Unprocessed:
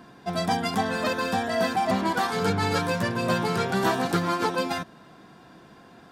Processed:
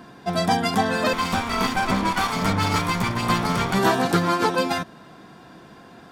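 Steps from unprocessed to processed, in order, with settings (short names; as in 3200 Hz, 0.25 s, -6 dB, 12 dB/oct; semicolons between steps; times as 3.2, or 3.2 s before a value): 1.13–3.79 minimum comb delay 0.89 ms; gain +4.5 dB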